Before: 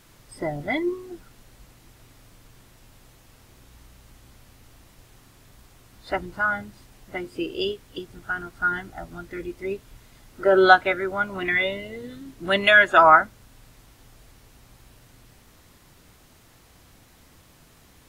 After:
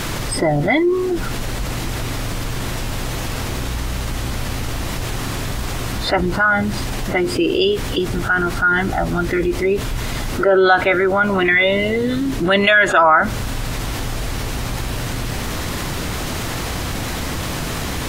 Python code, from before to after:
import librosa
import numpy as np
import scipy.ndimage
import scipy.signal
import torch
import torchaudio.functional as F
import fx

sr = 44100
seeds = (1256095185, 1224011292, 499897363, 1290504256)

y = fx.high_shelf(x, sr, hz=8400.0, db=-7.5)
y = fx.env_flatten(y, sr, amount_pct=70)
y = F.gain(torch.from_numpy(y), -1.0).numpy()